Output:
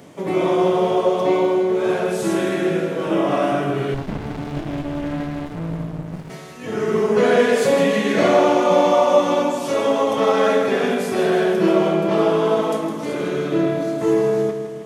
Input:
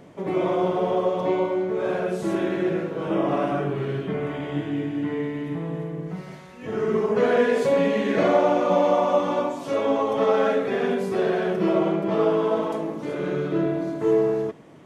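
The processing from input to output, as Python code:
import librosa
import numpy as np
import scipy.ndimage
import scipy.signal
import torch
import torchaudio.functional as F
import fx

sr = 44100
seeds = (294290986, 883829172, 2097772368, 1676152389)

y = scipy.signal.sosfilt(scipy.signal.butter(4, 68.0, 'highpass', fs=sr, output='sos'), x)
y = fx.high_shelf(y, sr, hz=3900.0, db=11.5)
y = fx.doubler(y, sr, ms=24.0, db=-11.0)
y = fx.echo_feedback(y, sr, ms=159, feedback_pct=54, wet_db=-9)
y = fx.running_max(y, sr, window=65, at=(3.94, 6.3))
y = F.gain(torch.from_numpy(y), 3.0).numpy()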